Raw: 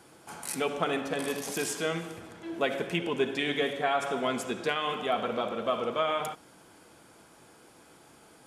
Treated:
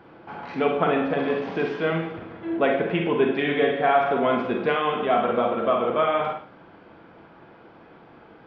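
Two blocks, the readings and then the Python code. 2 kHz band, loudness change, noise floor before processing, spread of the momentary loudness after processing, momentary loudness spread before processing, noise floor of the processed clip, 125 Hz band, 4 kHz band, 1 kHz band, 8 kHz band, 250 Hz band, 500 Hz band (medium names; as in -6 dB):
+5.5 dB, +7.5 dB, -57 dBFS, 10 LU, 9 LU, -50 dBFS, +8.0 dB, -1.0 dB, +8.0 dB, under -30 dB, +8.5 dB, +8.5 dB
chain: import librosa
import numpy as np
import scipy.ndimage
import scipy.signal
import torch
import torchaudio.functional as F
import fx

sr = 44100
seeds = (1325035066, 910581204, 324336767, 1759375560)

y = scipy.ndimage.gaussian_filter1d(x, 3.2, mode='constant')
y = fx.rev_schroeder(y, sr, rt60_s=0.39, comb_ms=33, drr_db=3.0)
y = F.gain(torch.from_numpy(y), 7.0).numpy()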